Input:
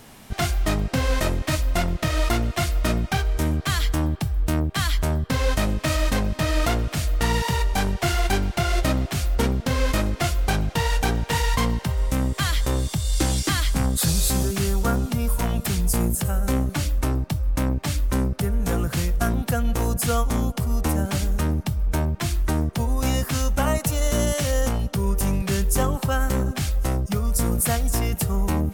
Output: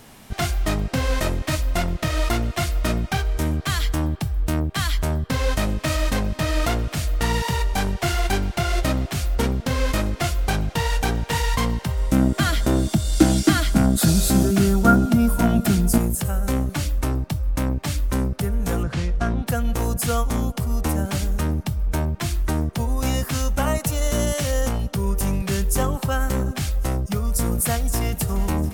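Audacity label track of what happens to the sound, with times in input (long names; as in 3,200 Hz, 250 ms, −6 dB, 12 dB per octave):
12.120000	15.980000	hollow resonant body resonances 220/310/650/1,400 Hz, height 13 dB, ringing for 50 ms
18.830000	19.470000	high-frequency loss of the air 110 metres
27.650000	28.180000	delay throw 350 ms, feedback 85%, level −15.5 dB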